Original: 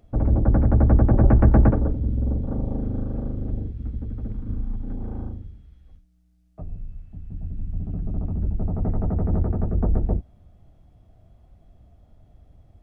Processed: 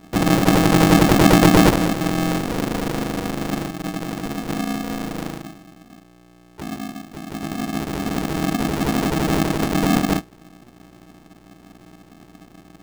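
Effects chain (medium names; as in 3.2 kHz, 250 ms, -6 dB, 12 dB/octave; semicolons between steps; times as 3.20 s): hum 60 Hz, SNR 28 dB; polarity switched at an audio rate 240 Hz; trim +1.5 dB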